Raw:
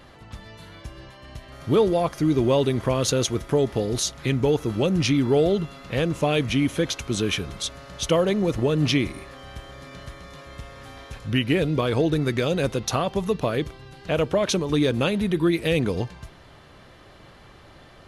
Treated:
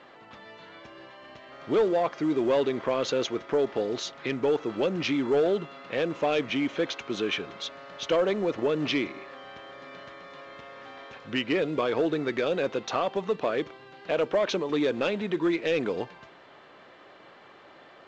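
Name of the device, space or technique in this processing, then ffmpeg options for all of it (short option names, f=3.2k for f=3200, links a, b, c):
telephone: -af "highpass=330,lowpass=3.1k,asoftclip=type=tanh:threshold=-16.5dB" -ar 16000 -c:a pcm_mulaw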